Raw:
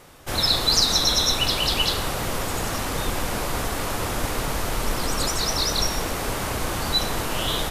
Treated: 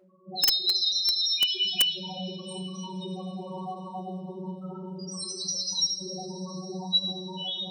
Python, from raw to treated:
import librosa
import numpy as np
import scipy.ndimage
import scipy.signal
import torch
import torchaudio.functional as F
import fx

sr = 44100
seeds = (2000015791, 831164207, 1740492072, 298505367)

y = fx.robotise(x, sr, hz=186.0)
y = scipy.signal.sosfilt(scipy.signal.butter(2, 69.0, 'highpass', fs=sr, output='sos'), y)
y = fx.high_shelf(y, sr, hz=6000.0, db=9.0)
y = 10.0 ** (-13.5 / 20.0) * (np.abs((y / 10.0 ** (-13.5 / 20.0) + 3.0) % 4.0 - 2.0) - 1.0)
y = fx.spec_topn(y, sr, count=2)
y = fx.peak_eq(y, sr, hz=1500.0, db=4.5, octaves=1.3)
y = fx.rev_double_slope(y, sr, seeds[0], early_s=0.49, late_s=4.2, knee_db=-18, drr_db=-2.5)
y = (np.mod(10.0 ** (14.5 / 20.0) * y + 1.0, 2.0) - 1.0) / 10.0 ** (14.5 / 20.0)